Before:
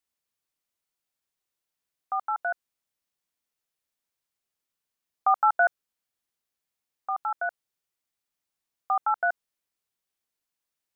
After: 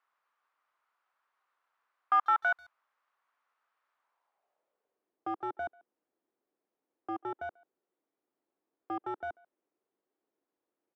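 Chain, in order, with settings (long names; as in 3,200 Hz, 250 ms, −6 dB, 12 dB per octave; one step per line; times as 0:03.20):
mid-hump overdrive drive 30 dB, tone 1,200 Hz, clips at −12.5 dBFS
band-pass filter sweep 1,200 Hz → 330 Hz, 0:03.95–0:05.16
far-end echo of a speakerphone 140 ms, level −25 dB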